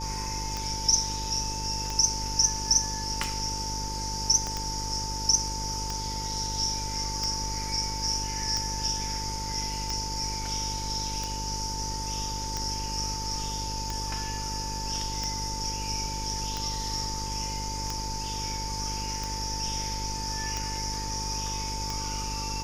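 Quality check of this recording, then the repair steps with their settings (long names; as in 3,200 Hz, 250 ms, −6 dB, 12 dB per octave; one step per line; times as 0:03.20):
mains buzz 50 Hz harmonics 11 −36 dBFS
scratch tick 45 rpm −17 dBFS
whistle 890 Hz −36 dBFS
0:04.47: click −18 dBFS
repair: click removal
hum removal 50 Hz, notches 11
notch filter 890 Hz, Q 30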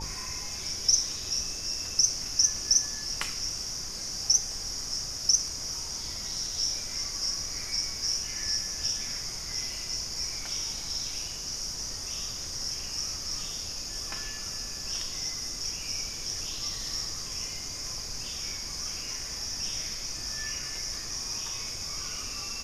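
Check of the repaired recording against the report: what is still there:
0:04.47: click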